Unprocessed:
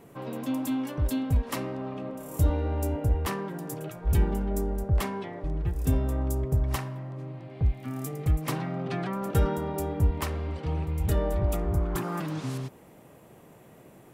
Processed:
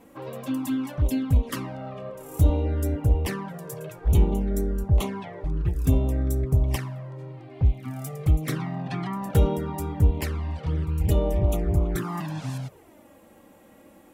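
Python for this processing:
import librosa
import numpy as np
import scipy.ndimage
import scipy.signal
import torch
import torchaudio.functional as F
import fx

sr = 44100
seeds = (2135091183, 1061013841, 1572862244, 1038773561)

y = fx.env_flanger(x, sr, rest_ms=4.1, full_db=-22.0)
y = fx.cheby_harmonics(y, sr, harmonics=(7,), levels_db=(-36,), full_scale_db=-12.5)
y = y * librosa.db_to_amplitude(4.5)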